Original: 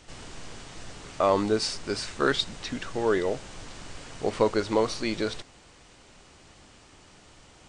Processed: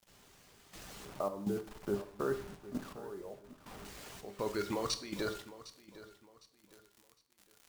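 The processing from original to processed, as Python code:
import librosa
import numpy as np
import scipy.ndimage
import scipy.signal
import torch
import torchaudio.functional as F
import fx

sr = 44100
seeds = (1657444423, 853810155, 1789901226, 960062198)

y = fx.highpass(x, sr, hz=42.0, slope=6)
y = fx.dereverb_blind(y, sr, rt60_s=0.78)
y = fx.lowpass(y, sr, hz=1200.0, slope=24, at=(1.05, 3.85))
y = fx.level_steps(y, sr, step_db=18)
y = fx.dmg_crackle(y, sr, seeds[0], per_s=120.0, level_db=-49.0)
y = fx.comb_fb(y, sr, f0_hz=200.0, decay_s=0.4, harmonics='all', damping=0.0, mix_pct=60)
y = fx.quant_dither(y, sr, seeds[1], bits=10, dither='none')
y = fx.step_gate(y, sr, bpm=82, pattern='....xxx.xxx.xx.x', floor_db=-12.0, edge_ms=4.5)
y = fx.echo_feedback(y, sr, ms=757, feedback_pct=32, wet_db=-16.5)
y = fx.rev_plate(y, sr, seeds[2], rt60_s=0.59, hf_ratio=0.8, predelay_ms=0, drr_db=8.0)
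y = F.gain(torch.from_numpy(y), 9.0).numpy()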